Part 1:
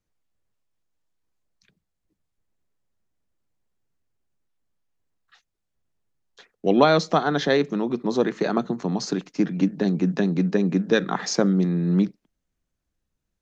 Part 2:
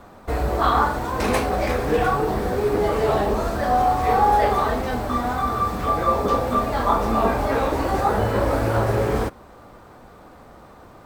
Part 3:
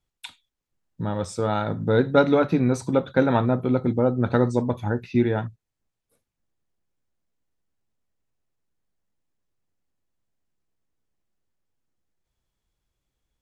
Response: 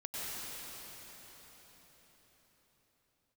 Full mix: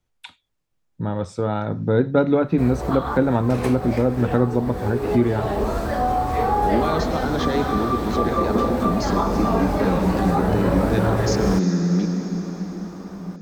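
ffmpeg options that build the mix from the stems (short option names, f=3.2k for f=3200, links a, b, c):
-filter_complex "[0:a]alimiter=limit=-14.5dB:level=0:latency=1,volume=-1dB,asplit=2[a][b];[b]volume=-4.5dB[c];[1:a]adelay=2300,volume=1dB[d];[2:a]lowpass=f=2.6k:p=1,volume=2.5dB,asplit=2[e][f];[f]apad=whole_len=589134[g];[d][g]sidechaincompress=threshold=-21dB:ratio=5:attack=8.3:release=430[h];[3:a]atrim=start_sample=2205[i];[c][i]afir=irnorm=-1:irlink=0[j];[a][h][e][j]amix=inputs=4:normalize=0,acrossover=split=470[k][l];[l]acompressor=threshold=-30dB:ratio=1.5[m];[k][m]amix=inputs=2:normalize=0"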